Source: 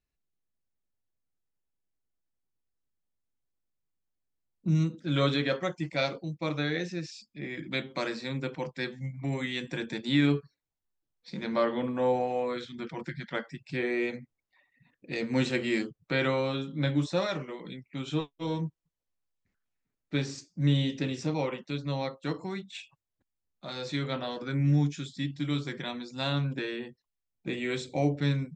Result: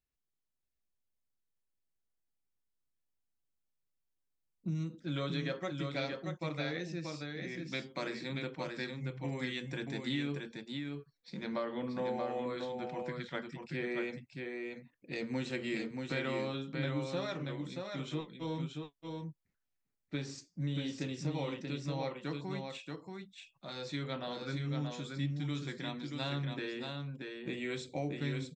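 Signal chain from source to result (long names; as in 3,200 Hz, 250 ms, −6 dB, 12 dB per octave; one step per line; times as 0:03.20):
downward compressor, threshold −27 dBFS, peak gain reduction 8 dB
single-tap delay 631 ms −4.5 dB
level −5.5 dB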